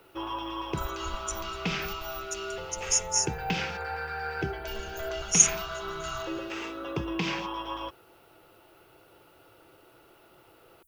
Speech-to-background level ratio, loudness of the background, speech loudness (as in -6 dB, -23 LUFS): 6.5 dB, -34.0 LUFS, -27.5 LUFS